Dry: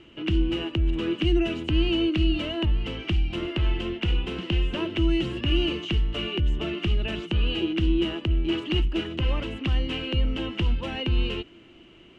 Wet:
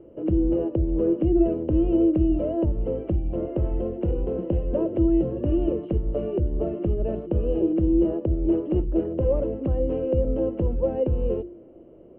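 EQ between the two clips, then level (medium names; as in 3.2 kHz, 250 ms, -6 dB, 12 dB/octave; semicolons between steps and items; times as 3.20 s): resonant low-pass 540 Hz, resonance Q 4.9; hum notches 50/100/150/200/250/300/350 Hz; +1.0 dB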